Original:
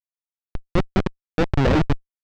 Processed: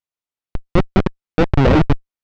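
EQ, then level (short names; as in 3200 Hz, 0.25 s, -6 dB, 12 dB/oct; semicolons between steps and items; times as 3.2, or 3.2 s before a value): LPF 3900 Hz 6 dB/oct; notch 1700 Hz, Q 18; +5.5 dB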